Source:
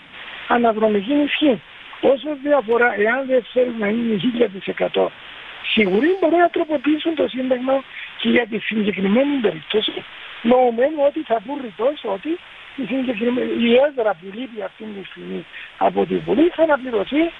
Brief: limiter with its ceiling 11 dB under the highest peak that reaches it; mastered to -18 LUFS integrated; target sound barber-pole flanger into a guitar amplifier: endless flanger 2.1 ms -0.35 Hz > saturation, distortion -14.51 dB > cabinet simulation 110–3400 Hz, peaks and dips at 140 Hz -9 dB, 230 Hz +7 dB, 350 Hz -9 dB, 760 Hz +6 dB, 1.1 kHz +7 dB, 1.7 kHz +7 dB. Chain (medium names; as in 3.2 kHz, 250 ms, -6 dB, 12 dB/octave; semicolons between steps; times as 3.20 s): peak limiter -13.5 dBFS; endless flanger 2.1 ms -0.35 Hz; saturation -20 dBFS; cabinet simulation 110–3400 Hz, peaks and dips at 140 Hz -9 dB, 230 Hz +7 dB, 350 Hz -9 dB, 760 Hz +6 dB, 1.1 kHz +7 dB, 1.7 kHz +7 dB; trim +9 dB